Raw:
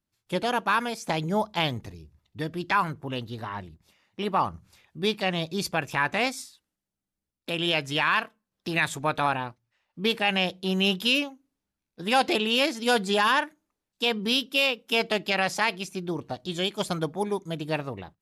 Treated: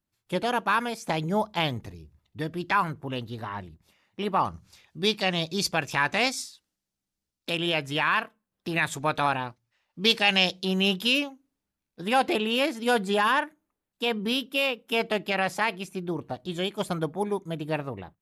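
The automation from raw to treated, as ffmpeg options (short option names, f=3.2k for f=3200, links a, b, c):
-af "asetnsamples=n=441:p=0,asendcmd='4.45 equalizer g 6;7.57 equalizer g -5;8.92 equalizer g 2.5;10.01 equalizer g 11;10.65 equalizer g -1;12.08 equalizer g -8',equalizer=f=5.3k:t=o:w=1.4:g=-2.5"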